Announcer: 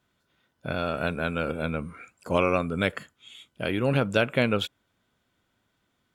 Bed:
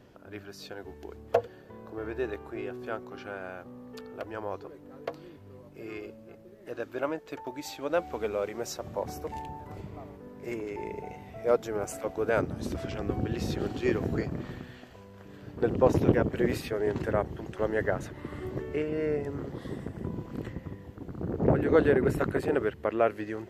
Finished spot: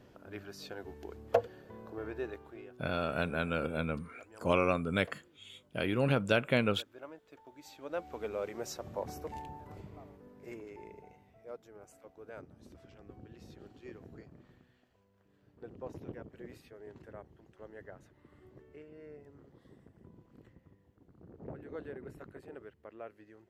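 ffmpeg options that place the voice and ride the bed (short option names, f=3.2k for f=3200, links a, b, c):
-filter_complex "[0:a]adelay=2150,volume=-5dB[a];[1:a]volume=9.5dB,afade=t=out:st=1.79:d=0.97:silence=0.188365,afade=t=in:st=7.5:d=1.05:silence=0.251189,afade=t=out:st=9.32:d=2.17:silence=0.149624[b];[a][b]amix=inputs=2:normalize=0"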